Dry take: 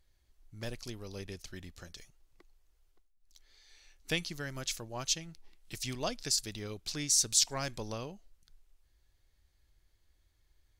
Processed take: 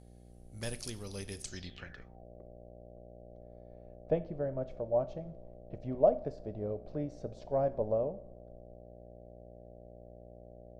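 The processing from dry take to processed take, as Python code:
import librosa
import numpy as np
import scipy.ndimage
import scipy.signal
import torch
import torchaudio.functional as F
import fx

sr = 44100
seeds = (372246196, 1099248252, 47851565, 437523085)

y = fx.dmg_buzz(x, sr, base_hz=60.0, harmonics=13, level_db=-54.0, tilt_db=-6, odd_only=False)
y = fx.rev_double_slope(y, sr, seeds[0], early_s=0.52, late_s=1.6, knee_db=-16, drr_db=11.5)
y = fx.filter_sweep_lowpass(y, sr, from_hz=10000.0, to_hz=610.0, start_s=1.4, end_s=2.25, q=6.5)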